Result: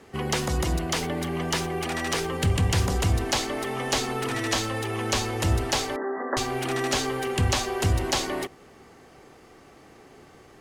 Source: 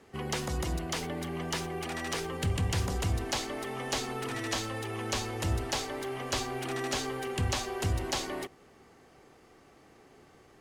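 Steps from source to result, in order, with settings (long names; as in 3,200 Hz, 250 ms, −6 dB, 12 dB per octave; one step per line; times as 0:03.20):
0:05.96–0:06.37: linear-phase brick-wall band-pass 180–2,000 Hz
level +7 dB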